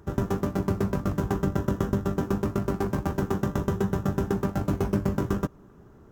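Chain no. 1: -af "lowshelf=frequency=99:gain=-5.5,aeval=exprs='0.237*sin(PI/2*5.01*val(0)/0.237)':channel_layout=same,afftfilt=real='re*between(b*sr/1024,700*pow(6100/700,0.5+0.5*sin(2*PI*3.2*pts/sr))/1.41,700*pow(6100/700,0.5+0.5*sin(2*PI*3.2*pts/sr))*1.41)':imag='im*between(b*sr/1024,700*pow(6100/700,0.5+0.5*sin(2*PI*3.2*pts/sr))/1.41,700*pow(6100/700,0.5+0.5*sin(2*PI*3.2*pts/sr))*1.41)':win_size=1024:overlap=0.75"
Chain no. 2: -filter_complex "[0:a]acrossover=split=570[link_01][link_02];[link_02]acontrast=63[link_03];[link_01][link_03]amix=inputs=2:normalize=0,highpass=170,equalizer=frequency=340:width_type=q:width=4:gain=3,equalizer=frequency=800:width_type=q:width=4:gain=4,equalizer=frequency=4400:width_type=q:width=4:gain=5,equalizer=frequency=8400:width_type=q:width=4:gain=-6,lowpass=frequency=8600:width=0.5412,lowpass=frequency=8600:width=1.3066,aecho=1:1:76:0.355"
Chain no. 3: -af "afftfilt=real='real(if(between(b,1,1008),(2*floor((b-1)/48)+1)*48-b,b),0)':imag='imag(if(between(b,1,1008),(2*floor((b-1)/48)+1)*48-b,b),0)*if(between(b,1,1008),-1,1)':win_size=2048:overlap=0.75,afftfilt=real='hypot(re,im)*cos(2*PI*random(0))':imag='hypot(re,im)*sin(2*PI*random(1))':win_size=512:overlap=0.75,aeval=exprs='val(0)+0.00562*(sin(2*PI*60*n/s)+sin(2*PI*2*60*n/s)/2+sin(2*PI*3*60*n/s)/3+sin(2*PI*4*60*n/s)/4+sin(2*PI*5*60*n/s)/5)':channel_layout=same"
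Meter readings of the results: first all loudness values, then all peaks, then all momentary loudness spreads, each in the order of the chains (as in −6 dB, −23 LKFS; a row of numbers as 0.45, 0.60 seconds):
−29.5, −26.0, −33.0 LKFS; −11.0, −9.5, −16.0 dBFS; 3, 2, 2 LU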